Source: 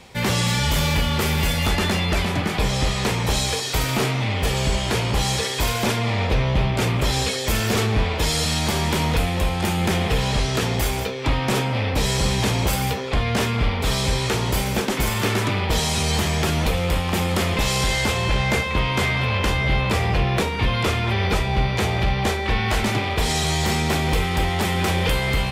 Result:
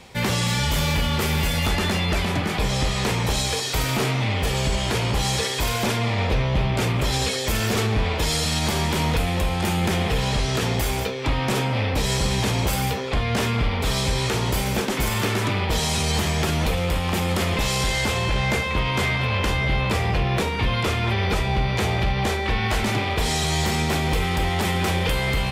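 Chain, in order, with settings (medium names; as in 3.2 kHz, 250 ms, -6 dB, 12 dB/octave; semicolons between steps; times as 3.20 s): peak limiter -13.5 dBFS, peak gain reduction 3 dB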